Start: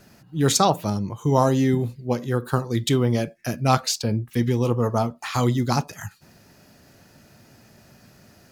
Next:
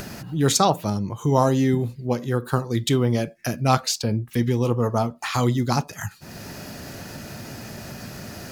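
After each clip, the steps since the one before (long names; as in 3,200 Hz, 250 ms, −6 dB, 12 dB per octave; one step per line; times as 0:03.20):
upward compression, threshold −22 dBFS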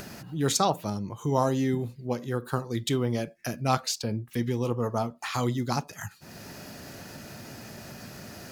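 low-shelf EQ 110 Hz −5 dB
every ending faded ahead of time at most 600 dB per second
level −5.5 dB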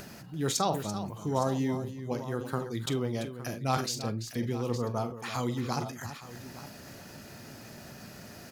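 on a send: multi-tap delay 45/338/863 ms −15/−12/−15 dB
on the sum: level that may fall only so fast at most 87 dB per second
level −4.5 dB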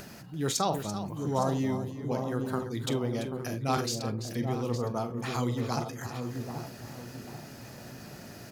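delay with a low-pass on its return 785 ms, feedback 35%, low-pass 720 Hz, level −4.5 dB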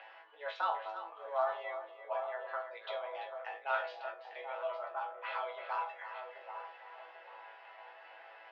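single-sideband voice off tune +140 Hz 490–3,000 Hz
resonators tuned to a chord A2 fifth, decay 0.24 s
level +9 dB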